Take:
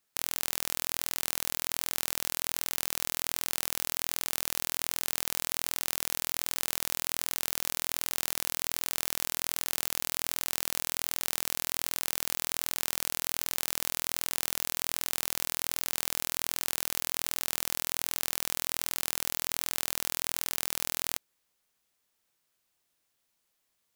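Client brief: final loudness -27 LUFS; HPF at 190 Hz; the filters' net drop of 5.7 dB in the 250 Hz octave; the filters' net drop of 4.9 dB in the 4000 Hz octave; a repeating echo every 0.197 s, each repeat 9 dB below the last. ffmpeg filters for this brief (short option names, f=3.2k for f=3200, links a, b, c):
-af "highpass=190,equalizer=f=250:t=o:g=-6,equalizer=f=4k:t=o:g=-6.5,aecho=1:1:197|394|591|788:0.355|0.124|0.0435|0.0152,volume=4dB"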